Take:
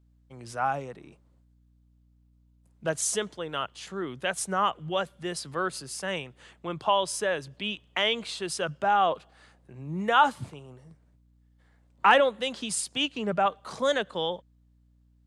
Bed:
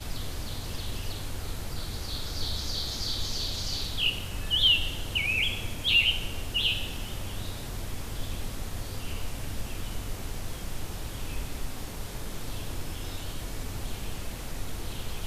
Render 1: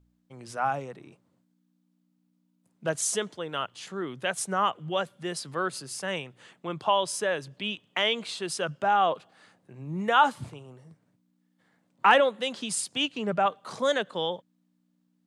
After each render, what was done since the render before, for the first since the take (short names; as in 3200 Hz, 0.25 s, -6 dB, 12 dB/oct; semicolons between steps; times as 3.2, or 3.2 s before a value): de-hum 60 Hz, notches 2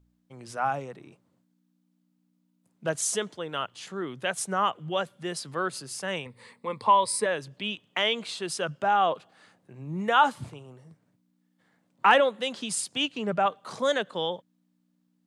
6.25–7.26 ripple EQ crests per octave 0.94, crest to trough 14 dB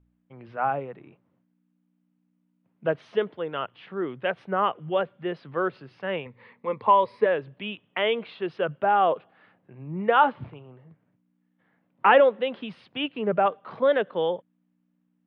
inverse Chebyshev low-pass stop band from 6900 Hz, stop band 50 dB; dynamic EQ 450 Hz, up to +7 dB, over -39 dBFS, Q 1.3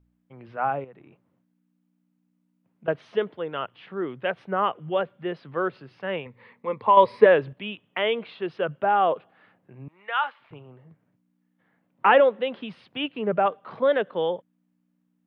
0.84–2.88 compressor 2.5:1, threshold -47 dBFS; 6.97–7.53 gain +7 dB; 9.88–10.51 HPF 1400 Hz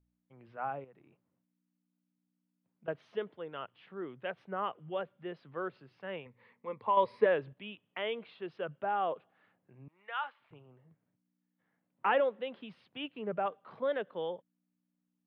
gain -11.5 dB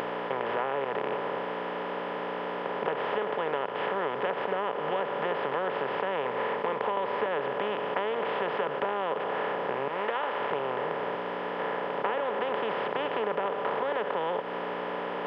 per-bin compression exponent 0.2; compressor, threshold -26 dBFS, peak gain reduction 9.5 dB